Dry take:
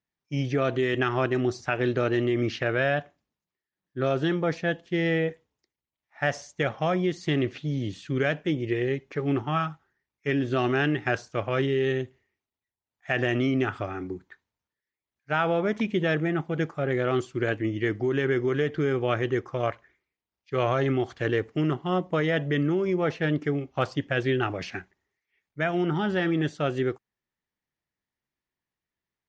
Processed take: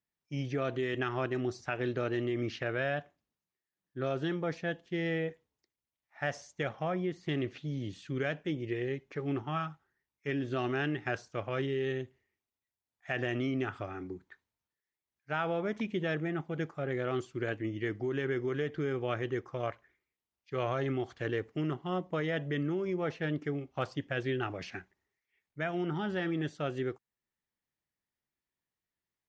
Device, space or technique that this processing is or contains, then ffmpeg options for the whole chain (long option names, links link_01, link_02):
parallel compression: -filter_complex "[0:a]asplit=2[link_01][link_02];[link_02]acompressor=threshold=-43dB:ratio=6,volume=-3.5dB[link_03];[link_01][link_03]amix=inputs=2:normalize=0,asettb=1/sr,asplit=3[link_04][link_05][link_06];[link_04]atrim=end=6.734[link_07];[link_05]atrim=start=6.73:end=7.29,asetpts=PTS-STARTPTS,afade=type=in:duration=0.004:curve=qsin,afade=type=out:start_time=0.556:duration=0.004:curve=qsin,acrossover=split=2700[link_08][link_09];[link_09]acompressor=threshold=-53dB:ratio=4:attack=1:release=60[link_10];[link_08][link_10]amix=inputs=2:normalize=0[link_11];[link_06]atrim=start=7.286[link_12];[link_07][link_11]acrossfade=duration=0.004:curve1=hsin:curve2=qsin[link_13];[link_13][link_12]acrossfade=duration=0.004:curve1=qsin:curve2=hsin,volume=-8.5dB"